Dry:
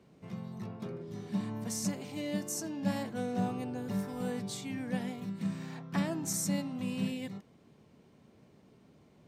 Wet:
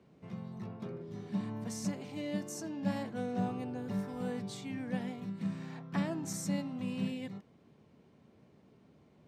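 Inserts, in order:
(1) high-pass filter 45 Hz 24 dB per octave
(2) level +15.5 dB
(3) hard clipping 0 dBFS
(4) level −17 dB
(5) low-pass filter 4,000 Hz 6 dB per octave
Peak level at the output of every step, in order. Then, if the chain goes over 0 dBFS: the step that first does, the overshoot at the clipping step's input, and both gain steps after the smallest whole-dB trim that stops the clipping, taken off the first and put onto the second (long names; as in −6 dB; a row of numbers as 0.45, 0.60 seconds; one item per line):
−20.0, −4.5, −4.5, −21.5, −22.0 dBFS
no step passes full scale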